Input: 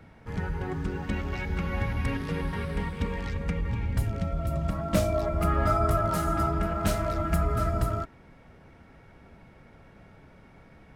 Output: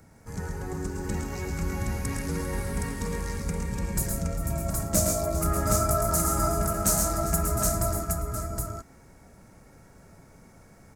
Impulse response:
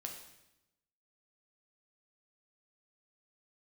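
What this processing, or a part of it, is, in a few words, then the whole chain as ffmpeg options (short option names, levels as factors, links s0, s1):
exciter from parts: -filter_complex "[0:a]highshelf=f=4700:t=q:w=3:g=13.5,asplit=2[s0][s1];[s1]highpass=f=4700:w=0.5412,highpass=f=4700:w=1.3066,asoftclip=type=tanh:threshold=0.2,highpass=f=2200:w=0.5412,highpass=f=2200:w=1.3066,volume=0.398[s2];[s0][s2]amix=inputs=2:normalize=0,asettb=1/sr,asplit=3[s3][s4][s5];[s3]atrim=end=3.664[s6];[s4]atrim=start=3.66:end=4.11,asetpts=PTS-STARTPTS,afade=t=in:d=0.004:c=qsin,afade=t=out:st=0.446:d=0.004:c=qsin,aecho=1:1:5.5:0.94,atrim=end_sample=19845[s7];[s5]atrim=start=4.106[s8];[s6][s7]acrossfade=d=0.004:c1=hsin:c2=qsin[s9];[s9][s8]acrossfade=d=0.004:c1=qsin:c2=hsin,aecho=1:1:111|133|163|398|600|768:0.473|0.473|0.15|0.178|0.133|0.708,volume=0.708"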